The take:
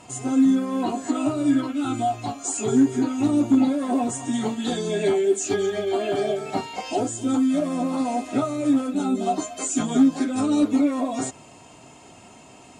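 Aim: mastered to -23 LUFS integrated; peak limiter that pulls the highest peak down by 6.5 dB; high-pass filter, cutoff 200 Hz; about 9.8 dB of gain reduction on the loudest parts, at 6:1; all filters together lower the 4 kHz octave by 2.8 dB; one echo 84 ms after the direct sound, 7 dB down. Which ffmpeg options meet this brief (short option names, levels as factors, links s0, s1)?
-af "highpass=200,equalizer=f=4000:t=o:g=-3.5,acompressor=threshold=0.0562:ratio=6,alimiter=limit=0.0794:level=0:latency=1,aecho=1:1:84:0.447,volume=2.11"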